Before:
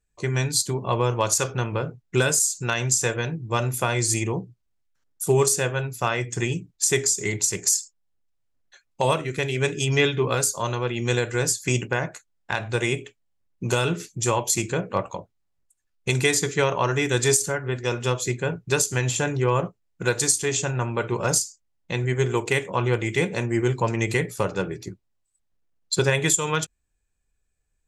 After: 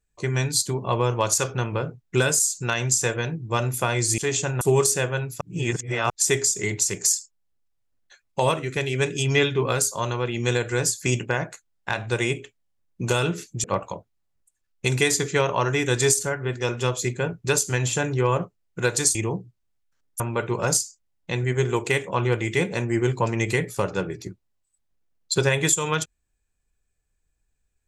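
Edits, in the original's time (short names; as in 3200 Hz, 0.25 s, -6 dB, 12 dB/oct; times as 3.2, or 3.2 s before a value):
4.18–5.23 swap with 20.38–20.81
6.03–6.72 reverse
14.26–14.87 cut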